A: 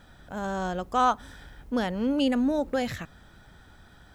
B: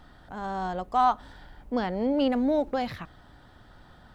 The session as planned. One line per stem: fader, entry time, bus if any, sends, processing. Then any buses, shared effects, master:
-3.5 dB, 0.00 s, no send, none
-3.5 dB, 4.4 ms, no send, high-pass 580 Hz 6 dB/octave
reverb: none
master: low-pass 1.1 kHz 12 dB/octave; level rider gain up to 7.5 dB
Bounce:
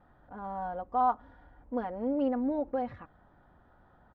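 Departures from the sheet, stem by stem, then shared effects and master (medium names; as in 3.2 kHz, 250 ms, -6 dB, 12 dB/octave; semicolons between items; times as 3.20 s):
stem A -3.5 dB -> -10.5 dB; master: missing level rider gain up to 7.5 dB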